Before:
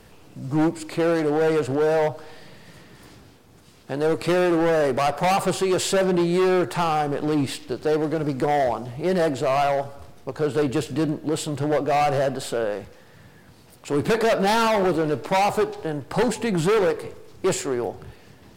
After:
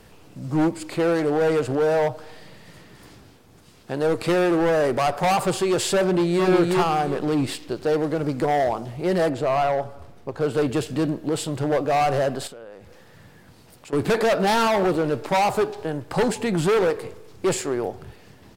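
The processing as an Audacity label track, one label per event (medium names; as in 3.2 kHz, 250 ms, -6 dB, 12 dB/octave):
6.030000	6.460000	echo throw 360 ms, feedback 25%, level -1.5 dB
9.290000	10.410000	treble shelf 3.4 kHz -7.5 dB
12.470000	13.930000	compression 4:1, threshold -41 dBFS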